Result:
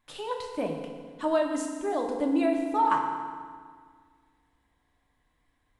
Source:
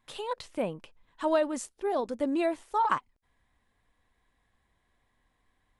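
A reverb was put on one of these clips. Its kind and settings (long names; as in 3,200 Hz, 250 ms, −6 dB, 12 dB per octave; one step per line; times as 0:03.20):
feedback delay network reverb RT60 1.8 s, low-frequency decay 1.25×, high-frequency decay 0.8×, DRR 1.5 dB
level −1.5 dB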